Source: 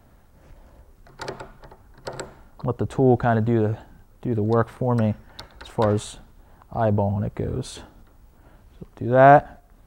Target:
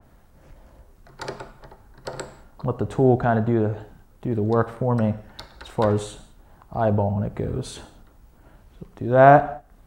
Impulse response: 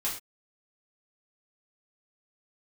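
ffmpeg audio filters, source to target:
-filter_complex "[0:a]asplit=2[s0][s1];[1:a]atrim=start_sample=2205,asetrate=26460,aresample=44100[s2];[s1][s2]afir=irnorm=-1:irlink=0,volume=0.106[s3];[s0][s3]amix=inputs=2:normalize=0,adynamicequalizer=threshold=0.0126:dfrequency=2300:dqfactor=0.7:tfrequency=2300:tqfactor=0.7:attack=5:release=100:ratio=0.375:range=3.5:mode=cutabove:tftype=highshelf,volume=0.891"

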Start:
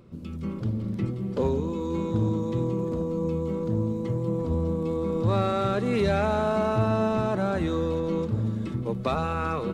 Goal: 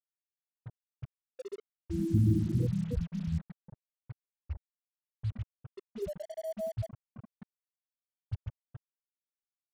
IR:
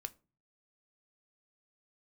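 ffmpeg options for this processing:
-filter_complex "[0:a]asettb=1/sr,asplit=3[s0][s1][s2];[s0]atrim=end=1.844[s3];[s1]atrim=start=1.84:end=3.38,asetpts=PTS-STARTPTS,afade=t=in:d=0.004:c=qsin,afade=t=out:st=1.536:d=0.004:c=qsin,lowshelf=f=350:g=11.5[s4];[s2]atrim=start=3.376[s5];[s3][s4]acrossfade=d=0.004:c1=hsin:c2=qsin[s6];[s6][s5]acrossfade=d=0.004:c1=qsin:c2=hsin,aecho=1:1:79|148:0.188|0.422,afftfilt=real='re*gte(hypot(re,im),0.631)':imag='im*gte(hypot(re,im),0.631)':win_size=1024:overlap=0.75,asubboost=boost=6.5:cutoff=55,acrusher=bits=6:mix=0:aa=0.5,volume=0.422"

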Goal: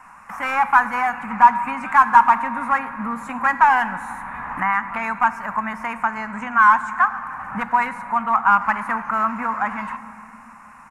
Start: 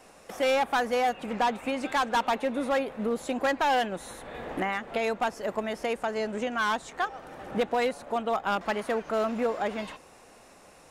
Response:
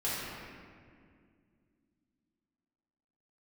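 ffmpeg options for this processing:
-filter_complex "[0:a]firequalizer=gain_entry='entry(230,0);entry(380,-22);entry(650,-9);entry(950,14);entry(2400,2);entry(3400,-17);entry(6800,-7)':delay=0.05:min_phase=1,asplit=2[s0][s1];[1:a]atrim=start_sample=2205,asetrate=38808,aresample=44100,highshelf=f=6700:g=11[s2];[s1][s2]afir=irnorm=-1:irlink=0,volume=0.106[s3];[s0][s3]amix=inputs=2:normalize=0,volume=1.41"

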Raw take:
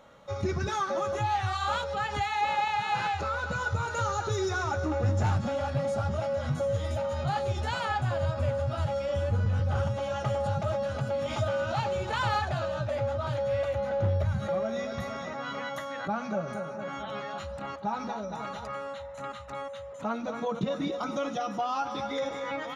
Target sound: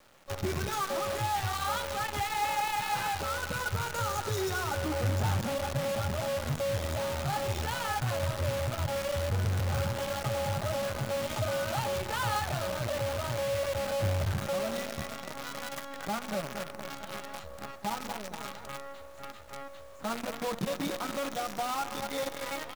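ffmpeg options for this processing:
-filter_complex "[0:a]asplit=5[s0][s1][s2][s3][s4];[s1]adelay=150,afreqshift=49,volume=0.112[s5];[s2]adelay=300,afreqshift=98,volume=0.0507[s6];[s3]adelay=450,afreqshift=147,volume=0.0226[s7];[s4]adelay=600,afreqshift=196,volume=0.0102[s8];[s0][s5][s6][s7][s8]amix=inputs=5:normalize=0,acrusher=bits=6:dc=4:mix=0:aa=0.000001,volume=0.708"

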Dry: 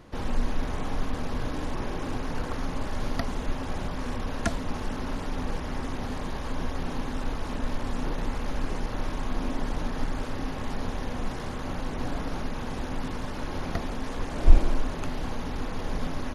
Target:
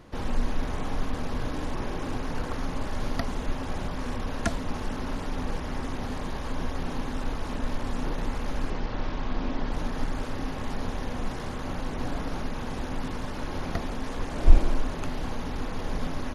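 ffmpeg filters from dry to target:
-filter_complex "[0:a]asettb=1/sr,asplit=3[s0][s1][s2];[s0]atrim=end=8.704[s3];[s1]atrim=start=8.7:end=9.72,asetpts=PTS-STARTPTS,afade=t=in:d=0.004:c=qsin,afade=t=out:st=1.016:d=0.004:c=qsin,lowpass=f=5400:w=0.5412,lowpass=f=5400:w=1.3066[s4];[s2]atrim=start=9.716[s5];[s3][s4]acrossfade=d=0.004:c1=hsin:c2=qsin[s6];[s6][s5]acrossfade=d=0.004:c1=qsin:c2=hsin"

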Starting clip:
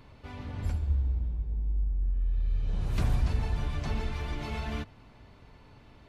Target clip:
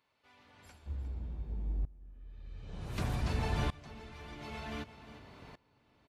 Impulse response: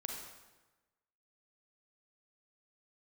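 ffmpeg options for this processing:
-af "asetnsamples=n=441:p=0,asendcmd='0.86 highpass f 160',highpass=f=1200:p=1,aecho=1:1:356:0.126,aeval=exprs='val(0)*pow(10,-22*if(lt(mod(-0.54*n/s,1),2*abs(-0.54)/1000),1-mod(-0.54*n/s,1)/(2*abs(-0.54)/1000),(mod(-0.54*n/s,1)-2*abs(-0.54)/1000)/(1-2*abs(-0.54)/1000))/20)':c=same,volume=2.11"

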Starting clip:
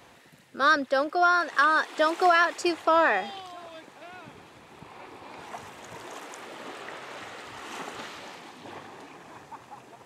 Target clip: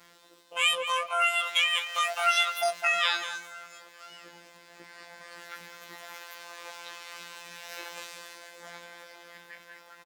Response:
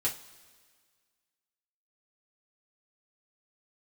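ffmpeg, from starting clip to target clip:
-filter_complex "[0:a]afftfilt=real='hypot(re,im)*cos(PI*b)':imag='0':win_size=2048:overlap=0.75,asplit=2[s0][s1];[s1]adelay=205,lowpass=f=1400:p=1,volume=0.376,asplit=2[s2][s3];[s3]adelay=205,lowpass=f=1400:p=1,volume=0.2,asplit=2[s4][s5];[s5]adelay=205,lowpass=f=1400:p=1,volume=0.2[s6];[s0][s2][s4][s6]amix=inputs=4:normalize=0,asetrate=88200,aresample=44100,atempo=0.5"

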